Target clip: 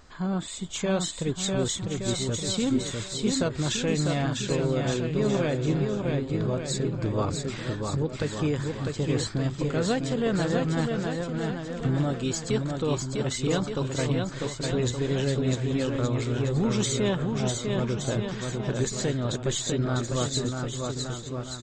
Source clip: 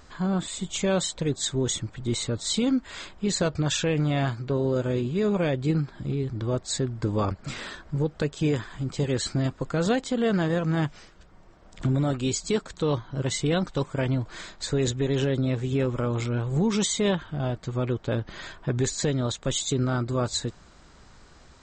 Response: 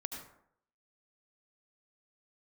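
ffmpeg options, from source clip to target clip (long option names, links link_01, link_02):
-af "aeval=exprs='0.188*(cos(1*acos(clip(val(0)/0.188,-1,1)))-cos(1*PI/2))+0.00168*(cos(6*acos(clip(val(0)/0.188,-1,1)))-cos(6*PI/2))':channel_layout=same,aecho=1:1:650|1170|1586|1919|2185:0.631|0.398|0.251|0.158|0.1,volume=-2.5dB"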